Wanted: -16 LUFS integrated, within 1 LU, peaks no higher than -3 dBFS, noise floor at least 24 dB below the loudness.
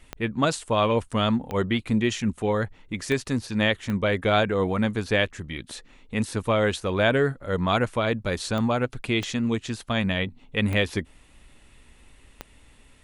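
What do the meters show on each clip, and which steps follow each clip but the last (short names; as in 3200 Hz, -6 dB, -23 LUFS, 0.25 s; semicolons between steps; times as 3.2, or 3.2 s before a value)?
clicks 8; loudness -25.0 LUFS; peak -7.0 dBFS; loudness target -16.0 LUFS
-> de-click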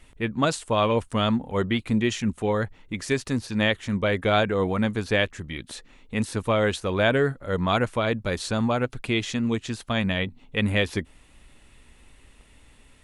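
clicks 0; loudness -25.0 LUFS; peak -7.0 dBFS; loudness target -16.0 LUFS
-> gain +9 dB; limiter -3 dBFS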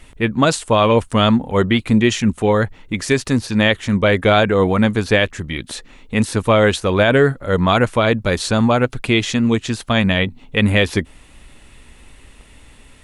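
loudness -16.5 LUFS; peak -3.0 dBFS; noise floor -46 dBFS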